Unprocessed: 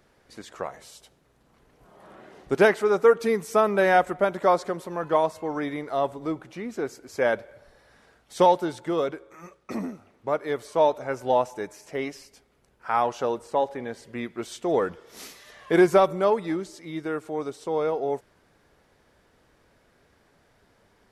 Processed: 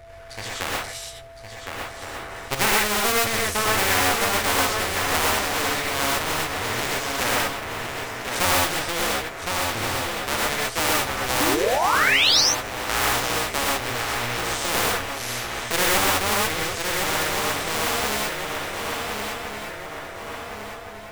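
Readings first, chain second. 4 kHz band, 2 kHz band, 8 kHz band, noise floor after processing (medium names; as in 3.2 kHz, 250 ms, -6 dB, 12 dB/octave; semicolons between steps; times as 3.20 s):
+19.5 dB, +10.0 dB, +21.5 dB, -38 dBFS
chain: cycle switcher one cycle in 2, muted; FFT filter 110 Hz 0 dB, 170 Hz -18 dB, 2.2 kHz -5 dB, 4.6 kHz -10 dB; on a send: shuffle delay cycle 1415 ms, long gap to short 3:1, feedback 31%, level -9 dB; on the sum: painted sound rise, 11.40–12.41 s, 270–6300 Hz -25 dBFS; whistle 670 Hz -63 dBFS; gated-style reverb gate 150 ms rising, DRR -5 dB; spectrum-flattening compressor 2:1; trim +2.5 dB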